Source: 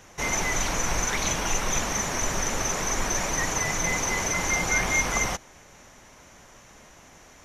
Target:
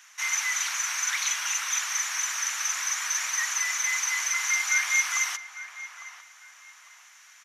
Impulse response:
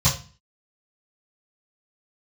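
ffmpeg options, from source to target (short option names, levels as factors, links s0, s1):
-filter_complex "[0:a]highpass=f=1300:w=0.5412,highpass=f=1300:w=1.3066,asplit=2[s0][s1];[s1]adelay=852,lowpass=f=1700:p=1,volume=0.282,asplit=2[s2][s3];[s3]adelay=852,lowpass=f=1700:p=1,volume=0.37,asplit=2[s4][s5];[s5]adelay=852,lowpass=f=1700:p=1,volume=0.37,asplit=2[s6][s7];[s7]adelay=852,lowpass=f=1700:p=1,volume=0.37[s8];[s2][s4][s6][s8]amix=inputs=4:normalize=0[s9];[s0][s9]amix=inputs=2:normalize=0,volume=1.12"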